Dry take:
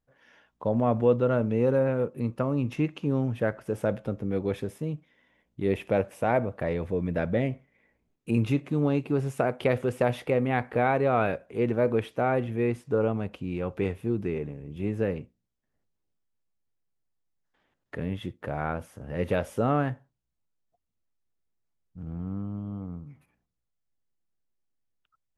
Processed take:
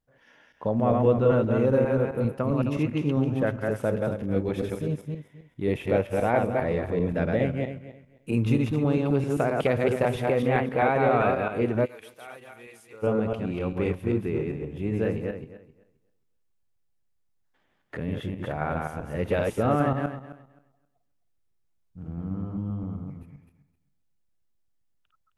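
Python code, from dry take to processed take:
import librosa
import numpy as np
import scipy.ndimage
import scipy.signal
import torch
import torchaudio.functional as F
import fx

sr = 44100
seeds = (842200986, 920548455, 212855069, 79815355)

y = fx.reverse_delay_fb(x, sr, ms=132, feedback_pct=42, wet_db=-2)
y = fx.pre_emphasis(y, sr, coefficient=0.97, at=(11.84, 13.02), fade=0.02)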